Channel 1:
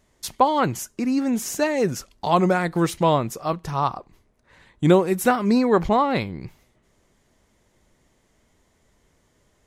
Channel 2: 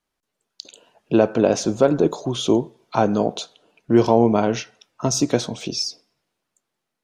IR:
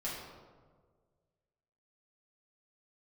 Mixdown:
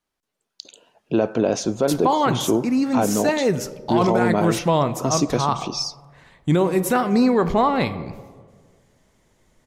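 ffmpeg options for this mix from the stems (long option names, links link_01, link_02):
-filter_complex "[0:a]adelay=1650,volume=0.5dB,asplit=2[link_01][link_02];[link_02]volume=-13dB[link_03];[1:a]volume=-1.5dB[link_04];[2:a]atrim=start_sample=2205[link_05];[link_03][link_05]afir=irnorm=-1:irlink=0[link_06];[link_01][link_04][link_06]amix=inputs=3:normalize=0,alimiter=limit=-9dB:level=0:latency=1:release=16"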